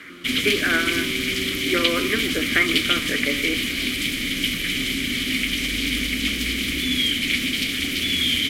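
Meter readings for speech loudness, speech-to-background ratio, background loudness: −24.5 LKFS, −2.5 dB, −22.0 LKFS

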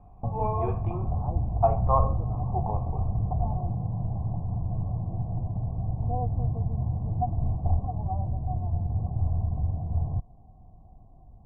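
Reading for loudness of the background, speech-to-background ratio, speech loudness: −30.0 LKFS, −0.5 dB, −30.5 LKFS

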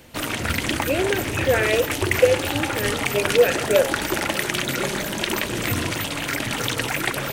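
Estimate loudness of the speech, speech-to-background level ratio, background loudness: −22.5 LKFS, 1.5 dB, −24.0 LKFS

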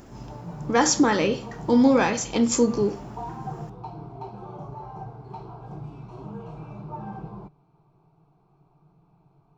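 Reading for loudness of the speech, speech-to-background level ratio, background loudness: −21.5 LKFS, 17.5 dB, −39.0 LKFS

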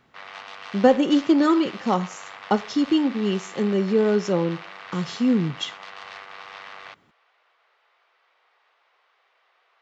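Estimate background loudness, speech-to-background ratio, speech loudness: −39.0 LKFS, 16.5 dB, −22.5 LKFS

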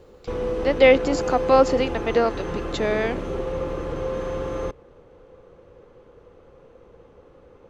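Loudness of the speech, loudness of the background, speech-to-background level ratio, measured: −21.0 LKFS, −28.5 LKFS, 7.5 dB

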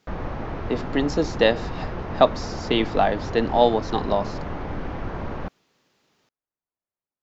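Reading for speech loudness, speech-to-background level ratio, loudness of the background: −23.0 LKFS, 9.5 dB, −32.5 LKFS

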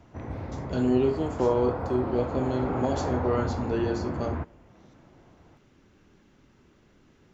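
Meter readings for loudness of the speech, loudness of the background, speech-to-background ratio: −28.0 LKFS, −33.0 LKFS, 5.0 dB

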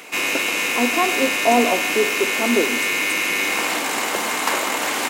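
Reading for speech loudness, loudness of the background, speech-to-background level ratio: −22.0 LKFS, −19.5 LKFS, −2.5 dB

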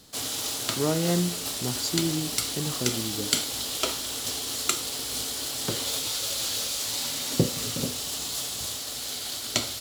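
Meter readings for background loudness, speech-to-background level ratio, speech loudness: −28.0 LKFS, −2.5 dB, −30.5 LKFS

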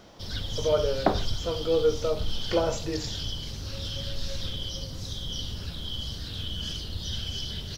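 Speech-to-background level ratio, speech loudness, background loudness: 5.5 dB, −28.5 LKFS, −34.0 LKFS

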